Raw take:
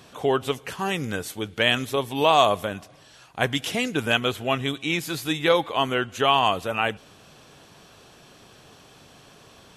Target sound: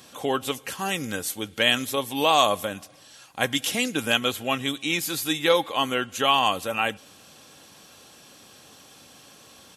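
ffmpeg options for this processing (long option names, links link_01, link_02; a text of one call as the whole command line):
ffmpeg -i in.wav -af "highpass=78,highshelf=frequency=4600:gain=11,aecho=1:1:3.7:0.33,volume=-2.5dB" out.wav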